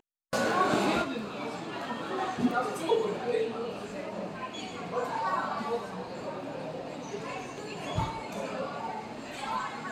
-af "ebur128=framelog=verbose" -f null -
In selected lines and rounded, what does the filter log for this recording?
Integrated loudness:
  I:         -32.8 LUFS
  Threshold: -42.8 LUFS
Loudness range:
  LRA:         6.6 LU
  Threshold: -53.3 LUFS
  LRA low:   -36.6 LUFS
  LRA high:  -30.0 LUFS